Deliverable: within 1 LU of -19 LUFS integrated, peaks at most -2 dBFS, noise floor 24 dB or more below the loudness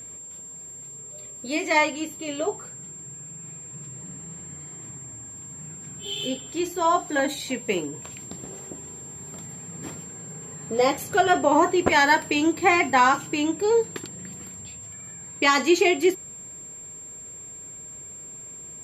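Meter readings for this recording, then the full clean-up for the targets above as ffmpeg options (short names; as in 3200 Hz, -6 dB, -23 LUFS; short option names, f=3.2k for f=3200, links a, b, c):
steady tone 7400 Hz; tone level -38 dBFS; loudness -22.5 LUFS; peak -6.5 dBFS; loudness target -19.0 LUFS
-> -af "bandreject=f=7.4k:w=30"
-af "volume=3.5dB"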